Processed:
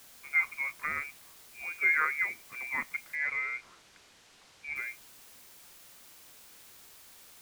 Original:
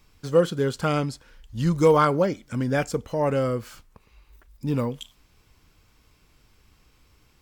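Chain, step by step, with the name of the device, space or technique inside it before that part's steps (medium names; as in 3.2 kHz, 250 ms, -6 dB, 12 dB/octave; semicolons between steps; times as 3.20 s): scrambled radio voice (band-pass 310–2700 Hz; frequency inversion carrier 2.6 kHz; white noise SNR 18 dB); 3.15–4.76 s: low-pass 5.9 kHz 12 dB/octave; trim -8.5 dB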